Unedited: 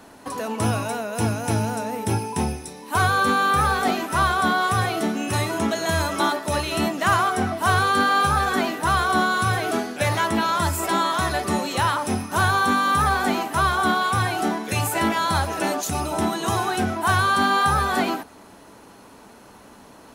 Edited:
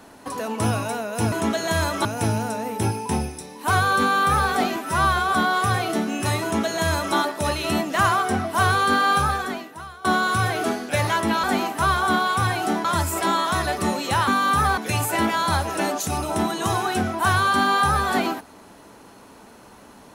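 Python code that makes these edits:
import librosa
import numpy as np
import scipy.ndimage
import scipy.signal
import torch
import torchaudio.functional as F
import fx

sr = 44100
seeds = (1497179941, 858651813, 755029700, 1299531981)

y = fx.edit(x, sr, fx.stretch_span(start_s=4.03, length_s=0.39, factor=1.5),
    fx.duplicate(start_s=5.5, length_s=0.73, to_s=1.32),
    fx.fade_out_to(start_s=8.28, length_s=0.84, curve='qua', floor_db=-21.5),
    fx.cut(start_s=11.94, length_s=0.75),
    fx.move(start_s=13.19, length_s=1.41, to_s=10.51), tone=tone)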